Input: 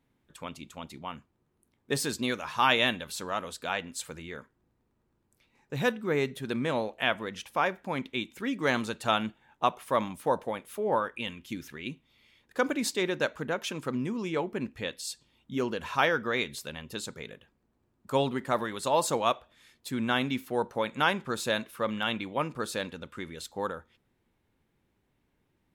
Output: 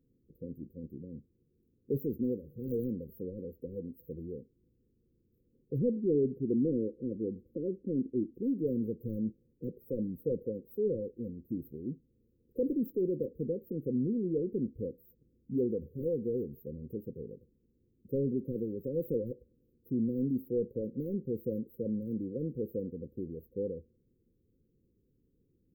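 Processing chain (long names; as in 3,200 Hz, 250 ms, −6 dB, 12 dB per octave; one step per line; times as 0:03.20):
0:05.78–0:08.43: drawn EQ curve 170 Hz 0 dB, 330 Hz +6 dB, 1,500 Hz −21 dB
soft clipping −24 dBFS, distortion −10 dB
linear-phase brick-wall band-stop 540–14,000 Hz
level +2 dB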